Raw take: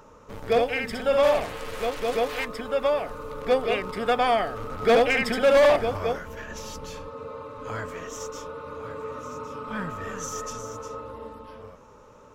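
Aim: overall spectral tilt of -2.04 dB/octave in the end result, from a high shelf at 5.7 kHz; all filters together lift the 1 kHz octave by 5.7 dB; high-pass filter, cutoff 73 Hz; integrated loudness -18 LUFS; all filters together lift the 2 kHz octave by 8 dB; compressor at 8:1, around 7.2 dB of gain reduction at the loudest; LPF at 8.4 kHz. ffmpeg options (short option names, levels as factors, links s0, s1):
-af "highpass=73,lowpass=8400,equalizer=f=1000:t=o:g=6,equalizer=f=2000:t=o:g=9,highshelf=f=5700:g=-7.5,acompressor=threshold=0.126:ratio=8,volume=2.51"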